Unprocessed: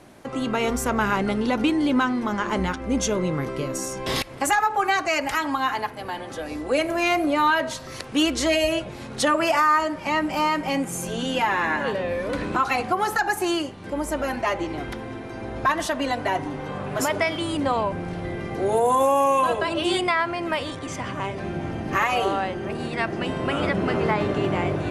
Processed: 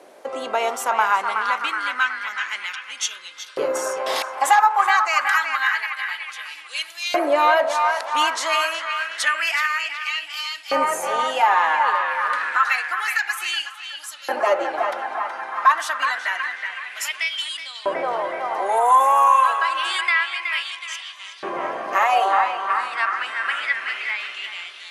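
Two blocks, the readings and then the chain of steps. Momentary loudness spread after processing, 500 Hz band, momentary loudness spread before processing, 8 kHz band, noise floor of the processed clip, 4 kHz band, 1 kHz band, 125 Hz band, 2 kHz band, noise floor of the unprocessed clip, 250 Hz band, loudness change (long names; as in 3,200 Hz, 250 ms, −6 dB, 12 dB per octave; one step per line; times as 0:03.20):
12 LU, −2.0 dB, 10 LU, +0.5 dB, −41 dBFS, +3.5 dB, +5.0 dB, below −25 dB, +5.5 dB, −37 dBFS, −15.0 dB, +3.0 dB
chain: feedback echo with a band-pass in the loop 371 ms, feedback 78%, band-pass 1,300 Hz, level −4 dB
auto-filter high-pass saw up 0.28 Hz 470–4,000 Hz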